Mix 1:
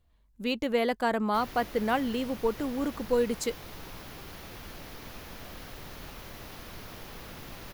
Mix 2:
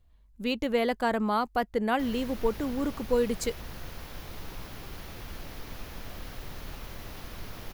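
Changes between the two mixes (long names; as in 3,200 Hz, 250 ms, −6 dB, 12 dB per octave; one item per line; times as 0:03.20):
background: entry +0.65 s
master: add low-shelf EQ 80 Hz +8.5 dB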